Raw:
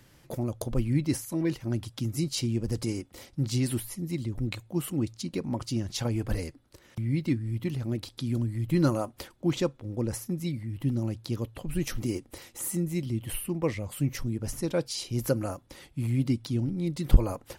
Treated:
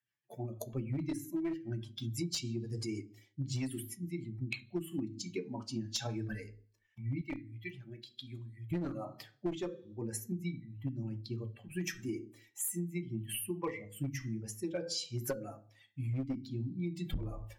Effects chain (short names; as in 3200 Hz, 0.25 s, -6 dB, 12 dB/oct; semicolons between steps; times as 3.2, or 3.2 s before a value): per-bin expansion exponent 2; reverb RT60 0.40 s, pre-delay 3 ms, DRR 5.5 dB; rotary speaker horn 6.3 Hz, later 1.2 Hz, at 4.51; one-sided clip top -28.5 dBFS; 7.21–8.71 bell 180 Hz -12.5 dB 3 oct; compressor 12:1, threshold -37 dBFS, peak gain reduction 16 dB; gain +4.5 dB